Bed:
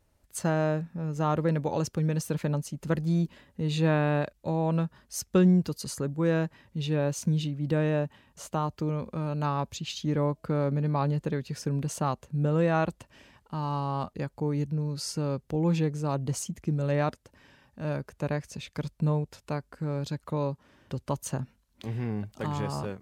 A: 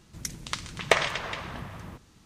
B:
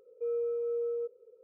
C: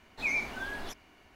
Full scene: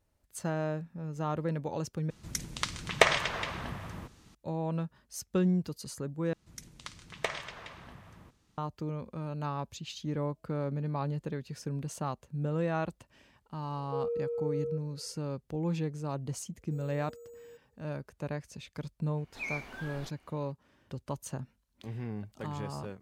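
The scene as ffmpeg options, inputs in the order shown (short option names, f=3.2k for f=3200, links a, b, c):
-filter_complex "[1:a]asplit=2[a][b];[2:a]asplit=2[c][d];[0:a]volume=-6.5dB[e];[d]acrusher=samples=6:mix=1:aa=0.000001[f];[e]asplit=3[g][h][i];[g]atrim=end=2.104[j];[a]atrim=end=2.25,asetpts=PTS-STARTPTS,volume=-0.5dB[k];[h]atrim=start=4.346:end=6.334[l];[b]atrim=end=2.25,asetpts=PTS-STARTPTS,volume=-12dB[m];[i]atrim=start=8.576[n];[c]atrim=end=1.43,asetpts=PTS-STARTPTS,volume=-1.5dB,afade=t=in:d=0.004:c=hsin,afade=t=out:st=1.426:d=0.004:c=hsin,adelay=13710[o];[f]atrim=end=1.43,asetpts=PTS-STARTPTS,volume=-18dB,afade=t=in:d=0.004:c=hsin,afade=t=out:st=1.426:d=0.004:c=hsin,adelay=16500[p];[3:a]atrim=end=1.35,asetpts=PTS-STARTPTS,volume=-7dB,afade=t=in:d=0.004:c=hsin,afade=t=out:st=1.346:d=0.004:c=hsin,adelay=19170[q];[j][k]acrossfade=d=0.004:c1=hsin:c2=hsin[r];[r][l]acrossfade=d=0.004:c1=hsin:c2=hsin[s];[s][m]acrossfade=d=0.004:c1=hsin:c2=hsin[t];[t][n]acrossfade=d=0.004:c1=hsin:c2=hsin[u];[u][o][p][q]amix=inputs=4:normalize=0"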